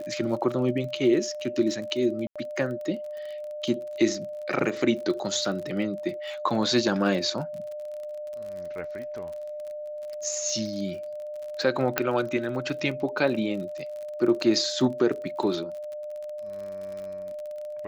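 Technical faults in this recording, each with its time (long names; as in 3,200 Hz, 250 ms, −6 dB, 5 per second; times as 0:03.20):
surface crackle 40 per second −35 dBFS
whistle 600 Hz −33 dBFS
0:02.27–0:02.36: drop-out 86 ms
0:11.98: click −7 dBFS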